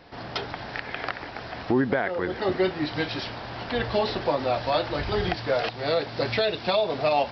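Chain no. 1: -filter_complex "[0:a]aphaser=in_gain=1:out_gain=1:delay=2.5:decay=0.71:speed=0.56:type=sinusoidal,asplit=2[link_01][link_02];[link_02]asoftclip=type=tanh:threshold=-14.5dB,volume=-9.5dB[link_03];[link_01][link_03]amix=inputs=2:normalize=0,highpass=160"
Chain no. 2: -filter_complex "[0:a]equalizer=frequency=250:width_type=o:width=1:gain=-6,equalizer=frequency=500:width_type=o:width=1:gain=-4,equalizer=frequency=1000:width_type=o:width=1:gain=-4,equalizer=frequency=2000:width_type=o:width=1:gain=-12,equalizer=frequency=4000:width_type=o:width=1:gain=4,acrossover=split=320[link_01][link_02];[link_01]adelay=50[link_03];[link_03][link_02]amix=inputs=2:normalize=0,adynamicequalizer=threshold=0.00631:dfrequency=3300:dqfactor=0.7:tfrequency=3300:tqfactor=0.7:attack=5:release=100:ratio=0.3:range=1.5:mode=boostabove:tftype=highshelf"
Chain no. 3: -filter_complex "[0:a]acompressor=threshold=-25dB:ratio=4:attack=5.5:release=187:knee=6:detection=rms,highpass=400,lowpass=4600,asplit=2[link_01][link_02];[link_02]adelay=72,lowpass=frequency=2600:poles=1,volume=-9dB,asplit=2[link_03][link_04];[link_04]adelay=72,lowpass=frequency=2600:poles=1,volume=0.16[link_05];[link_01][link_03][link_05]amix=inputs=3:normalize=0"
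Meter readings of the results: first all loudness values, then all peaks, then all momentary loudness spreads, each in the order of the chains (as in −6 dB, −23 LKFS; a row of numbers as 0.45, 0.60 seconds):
−20.5, −31.5, −33.0 LKFS; −1.0, −14.0, −16.0 dBFS; 14, 11, 5 LU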